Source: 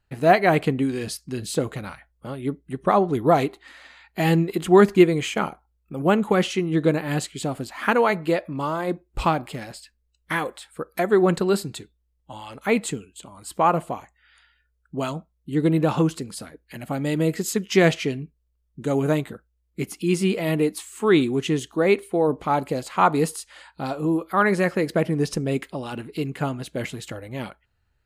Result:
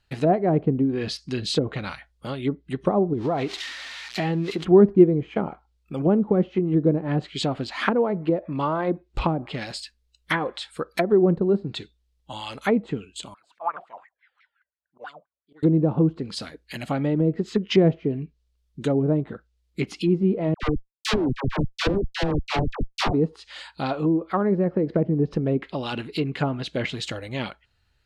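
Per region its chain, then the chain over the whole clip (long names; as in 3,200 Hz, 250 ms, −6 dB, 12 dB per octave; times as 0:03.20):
0:03.13–0:04.65: spike at every zero crossing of −23.5 dBFS + downward compressor 3 to 1, threshold −24 dBFS + parametric band 7,400 Hz +8.5 dB 2.5 octaves
0:13.34–0:15.63: LFO wah 5.8 Hz 550–2,000 Hz, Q 6.9 + volume swells 117 ms + pitch modulation by a square or saw wave saw down 4.7 Hz, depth 250 cents
0:20.54–0:23.13: samples sorted by size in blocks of 8 samples + comparator with hysteresis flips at −17 dBFS + all-pass dispersion lows, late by 89 ms, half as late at 780 Hz
whole clip: treble cut that deepens with the level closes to 470 Hz, closed at −18.5 dBFS; parametric band 4,000 Hz +9.5 dB 1.5 octaves; level +1.5 dB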